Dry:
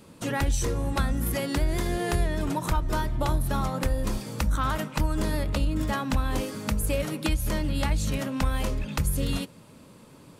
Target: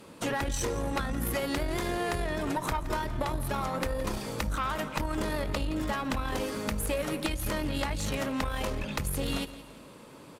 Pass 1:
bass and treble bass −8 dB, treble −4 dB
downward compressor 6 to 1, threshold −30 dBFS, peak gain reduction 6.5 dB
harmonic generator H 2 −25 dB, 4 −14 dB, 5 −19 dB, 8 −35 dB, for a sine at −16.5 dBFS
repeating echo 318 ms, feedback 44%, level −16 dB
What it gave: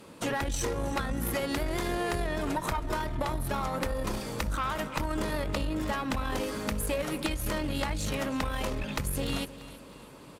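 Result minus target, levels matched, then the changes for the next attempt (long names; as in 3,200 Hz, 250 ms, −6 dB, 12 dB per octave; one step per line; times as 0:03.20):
echo 148 ms late
change: repeating echo 170 ms, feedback 44%, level −16 dB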